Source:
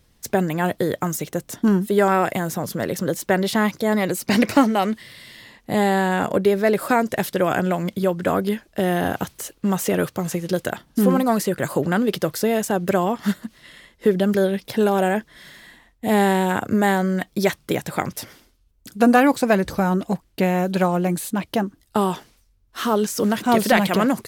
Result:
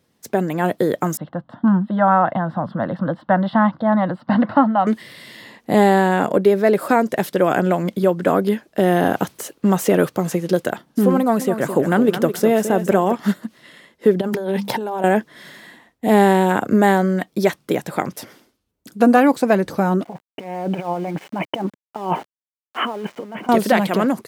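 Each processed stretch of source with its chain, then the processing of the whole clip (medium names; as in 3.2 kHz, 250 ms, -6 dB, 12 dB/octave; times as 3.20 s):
1.17–4.87 s: inverse Chebyshev low-pass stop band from 6 kHz + static phaser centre 990 Hz, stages 4
11.18–13.15 s: peaking EQ 4.6 kHz -6 dB 0.34 oct + feedback delay 215 ms, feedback 24%, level -10 dB
14.21–15.04 s: peaking EQ 900 Hz +13.5 dB 0.32 oct + hum notches 50/100/150/200/250/300 Hz + compressor with a negative ratio -26 dBFS
20.04–23.49 s: compressor with a negative ratio -25 dBFS, ratio -0.5 + rippled Chebyshev low-pass 3.1 kHz, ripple 9 dB + small samples zeroed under -45.5 dBFS
whole clip: tilt shelf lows +3.5 dB, about 1.4 kHz; level rider; high-pass 180 Hz 12 dB/octave; trim -2.5 dB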